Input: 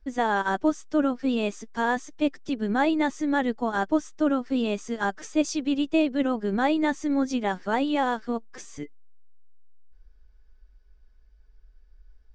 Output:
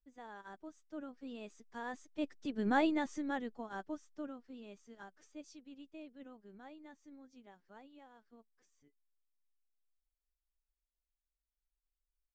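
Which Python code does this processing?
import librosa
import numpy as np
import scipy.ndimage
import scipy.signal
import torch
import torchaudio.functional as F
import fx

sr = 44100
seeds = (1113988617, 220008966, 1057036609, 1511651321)

y = fx.doppler_pass(x, sr, speed_mps=5, closest_m=1.3, pass_at_s=2.84)
y = fx.am_noise(y, sr, seeds[0], hz=5.7, depth_pct=60)
y = y * 10.0 ** (-4.5 / 20.0)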